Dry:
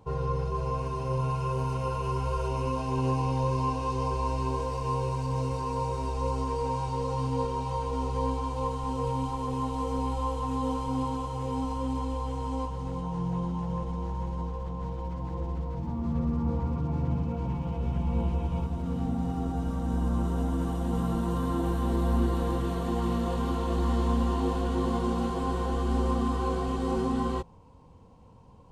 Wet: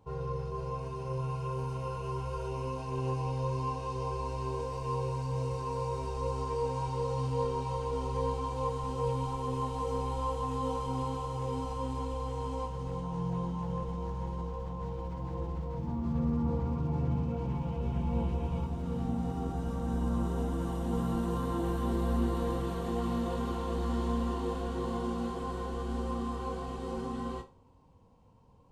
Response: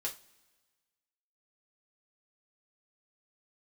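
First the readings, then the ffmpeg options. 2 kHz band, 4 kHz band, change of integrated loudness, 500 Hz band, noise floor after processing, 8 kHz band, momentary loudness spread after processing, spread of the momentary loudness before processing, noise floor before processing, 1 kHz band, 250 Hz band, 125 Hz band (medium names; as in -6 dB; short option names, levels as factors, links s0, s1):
-4.5 dB, -4.0 dB, -4.0 dB, -2.5 dB, -40 dBFS, -4.0 dB, 5 LU, 5 LU, -35 dBFS, -4.5 dB, -4.5 dB, -4.0 dB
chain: -filter_complex "[0:a]dynaudnorm=f=550:g=21:m=1.68,asplit=2[s0][s1];[1:a]atrim=start_sample=2205,adelay=21[s2];[s1][s2]afir=irnorm=-1:irlink=0,volume=0.422[s3];[s0][s3]amix=inputs=2:normalize=0,volume=0.422"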